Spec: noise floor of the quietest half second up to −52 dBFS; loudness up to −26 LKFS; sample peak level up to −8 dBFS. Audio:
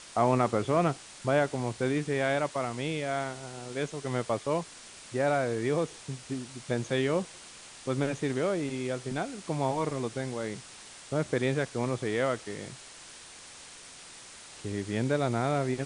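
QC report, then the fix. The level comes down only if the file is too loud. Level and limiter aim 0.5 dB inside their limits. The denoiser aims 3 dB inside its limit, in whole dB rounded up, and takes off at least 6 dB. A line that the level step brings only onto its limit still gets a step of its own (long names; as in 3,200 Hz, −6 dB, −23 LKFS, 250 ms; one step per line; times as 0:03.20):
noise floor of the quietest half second −49 dBFS: out of spec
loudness −31.0 LKFS: in spec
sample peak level −12.5 dBFS: in spec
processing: broadband denoise 6 dB, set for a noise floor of −49 dBFS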